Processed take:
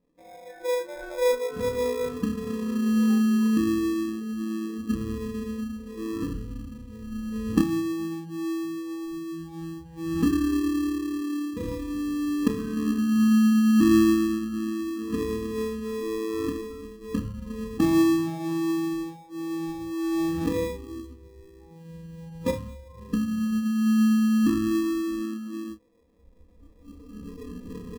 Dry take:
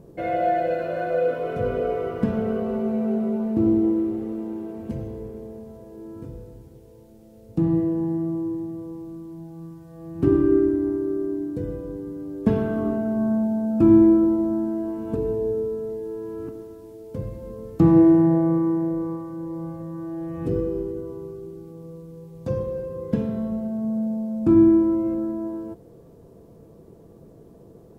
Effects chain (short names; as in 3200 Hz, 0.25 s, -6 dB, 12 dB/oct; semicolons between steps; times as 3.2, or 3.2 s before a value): recorder AGC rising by 6.4 dB/s; on a send: flutter echo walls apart 4.8 m, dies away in 0.25 s; on the sum: flange 0.16 Hz, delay 6.8 ms, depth 6 ms, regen -51%; LPF 1600 Hz 12 dB/oct; notches 50/100/150/200 Hz; comb 3.9 ms, depth 93%; in parallel at -3.5 dB: sample-and-hold 30×; on the sum: spectral noise reduction 19 dB; gain -8 dB